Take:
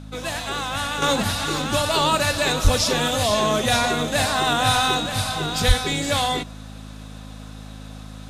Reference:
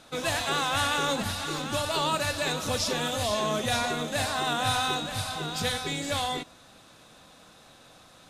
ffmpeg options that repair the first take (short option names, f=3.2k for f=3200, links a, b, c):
-filter_complex "[0:a]bandreject=f=52.7:t=h:w=4,bandreject=f=105.4:t=h:w=4,bandreject=f=158.1:t=h:w=4,bandreject=f=210.8:t=h:w=4,bandreject=f=263.5:t=h:w=4,asplit=3[a][b][c];[a]afade=t=out:st=2.63:d=0.02[d];[b]highpass=f=140:w=0.5412,highpass=f=140:w=1.3066,afade=t=in:st=2.63:d=0.02,afade=t=out:st=2.75:d=0.02[e];[c]afade=t=in:st=2.75:d=0.02[f];[d][e][f]amix=inputs=3:normalize=0,asplit=3[g][h][i];[g]afade=t=out:st=5.67:d=0.02[j];[h]highpass=f=140:w=0.5412,highpass=f=140:w=1.3066,afade=t=in:st=5.67:d=0.02,afade=t=out:st=5.79:d=0.02[k];[i]afade=t=in:st=5.79:d=0.02[l];[j][k][l]amix=inputs=3:normalize=0,asetnsamples=n=441:p=0,asendcmd='1.02 volume volume -7.5dB',volume=0dB"